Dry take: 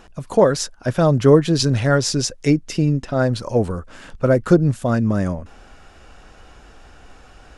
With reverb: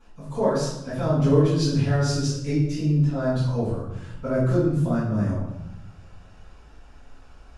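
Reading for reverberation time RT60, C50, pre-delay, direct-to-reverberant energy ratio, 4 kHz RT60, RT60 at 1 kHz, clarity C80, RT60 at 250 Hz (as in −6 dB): 0.90 s, 0.5 dB, 4 ms, −13.5 dB, 0.65 s, 0.90 s, 4.5 dB, 1.4 s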